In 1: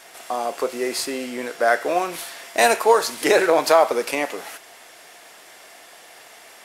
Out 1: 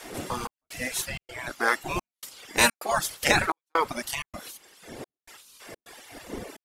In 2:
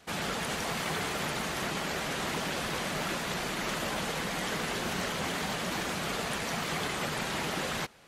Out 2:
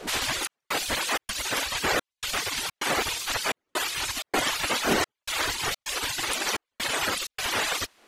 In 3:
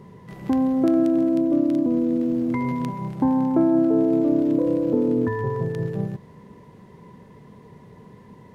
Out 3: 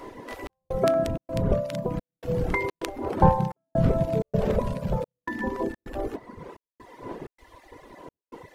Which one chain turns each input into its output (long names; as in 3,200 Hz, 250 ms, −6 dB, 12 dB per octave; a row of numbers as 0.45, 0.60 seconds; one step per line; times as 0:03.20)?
wind on the microphone 190 Hz −35 dBFS
gate on every frequency bin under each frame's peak −10 dB weak
reverb reduction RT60 1.5 s
gate pattern "xxxx..xxxx.xx" 128 BPM −60 dB
loudness normalisation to −27 LKFS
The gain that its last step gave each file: +1.5, +12.0, +9.5 decibels